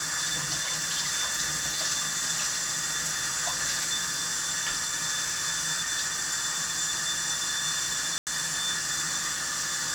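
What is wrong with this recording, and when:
0:08.18–0:08.27: drop-out 88 ms

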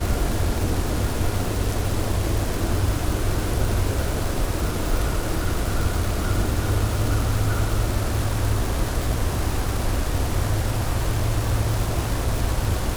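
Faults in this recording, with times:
surface crackle 580 per second −26 dBFS

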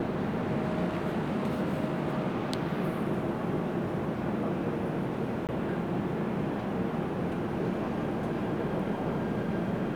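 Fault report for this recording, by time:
0:05.47–0:05.49: drop-out 18 ms

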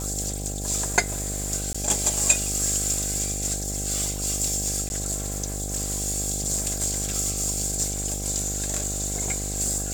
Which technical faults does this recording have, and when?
mains buzz 50 Hz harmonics 16 −32 dBFS
0:01.73–0:01.75: drop-out 15 ms
0:04.89–0:04.90: drop-out

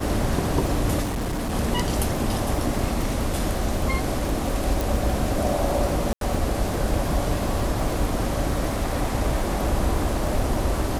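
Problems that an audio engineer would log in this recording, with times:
surface crackle 95 per second −30 dBFS
0:01.02–0:01.54: clipping −23.5 dBFS
0:04.81: click
0:06.13–0:06.21: drop-out 82 ms

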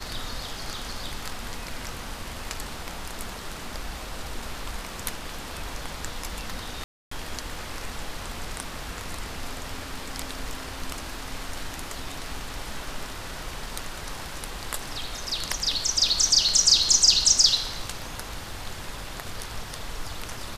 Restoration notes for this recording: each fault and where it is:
0:06.84–0:07.11: drop-out 274 ms

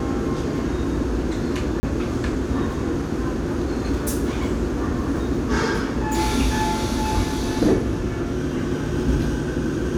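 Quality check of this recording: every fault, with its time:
0:01.80–0:01.83: drop-out 30 ms

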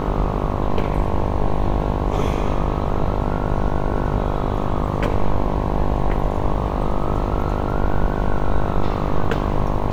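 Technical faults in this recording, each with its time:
mains buzz 50 Hz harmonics 22 −24 dBFS

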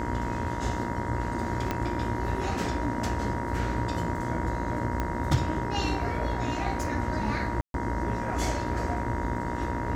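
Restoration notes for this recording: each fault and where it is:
mains buzz 60 Hz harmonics 35 −34 dBFS
whistle 950 Hz −35 dBFS
0:01.71: click −14 dBFS
0:05.00: click −16 dBFS
0:07.61–0:07.74: drop-out 132 ms

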